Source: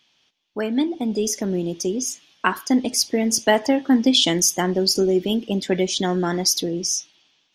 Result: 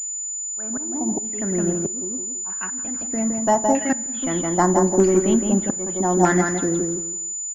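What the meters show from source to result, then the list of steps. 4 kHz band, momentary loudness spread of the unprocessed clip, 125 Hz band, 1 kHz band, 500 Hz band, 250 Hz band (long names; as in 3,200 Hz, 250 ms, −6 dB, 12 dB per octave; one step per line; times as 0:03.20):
−21.5 dB, 8 LU, +3.0 dB, +4.0 dB, +0.5 dB, −0.5 dB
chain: gain on a spectral selection 0:02.08–0:03.93, 210–2,400 Hz −6 dB
leveller curve on the samples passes 1
low-shelf EQ 79 Hz +7.5 dB
repeating echo 166 ms, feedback 24%, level −4.5 dB
volume swells 528 ms
auto-filter low-pass saw down 0.8 Hz 870–2,200 Hz
parametric band 460 Hz −11 dB 0.2 octaves
coupled-rooms reverb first 0.92 s, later 2.9 s, from −25 dB, DRR 18.5 dB
switching amplifier with a slow clock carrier 7,000 Hz
level −1.5 dB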